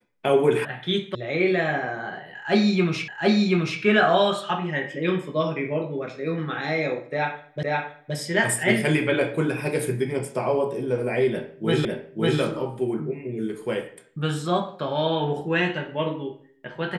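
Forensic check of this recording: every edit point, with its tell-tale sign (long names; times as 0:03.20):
0:00.65: cut off before it has died away
0:01.15: cut off before it has died away
0:03.08: the same again, the last 0.73 s
0:07.63: the same again, the last 0.52 s
0:11.85: the same again, the last 0.55 s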